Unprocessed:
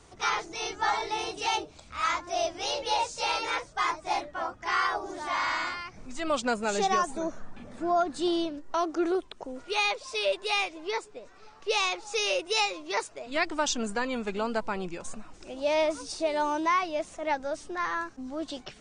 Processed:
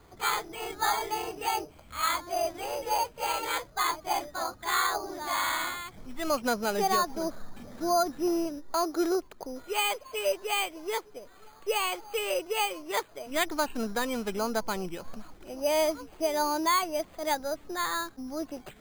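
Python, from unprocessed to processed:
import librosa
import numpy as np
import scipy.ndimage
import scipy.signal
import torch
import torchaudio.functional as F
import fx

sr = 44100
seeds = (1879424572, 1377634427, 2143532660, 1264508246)

y = np.repeat(scipy.signal.resample_poly(x, 1, 8), 8)[:len(x)]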